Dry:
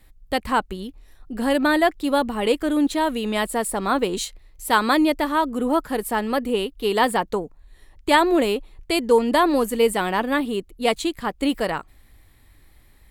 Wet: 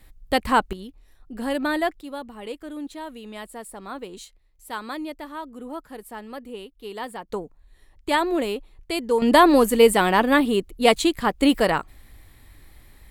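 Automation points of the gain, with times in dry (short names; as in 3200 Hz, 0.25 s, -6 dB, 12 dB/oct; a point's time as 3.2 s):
+2 dB
from 0.73 s -5.5 dB
from 2.01 s -14 dB
from 7.29 s -5 dB
from 9.22 s +4 dB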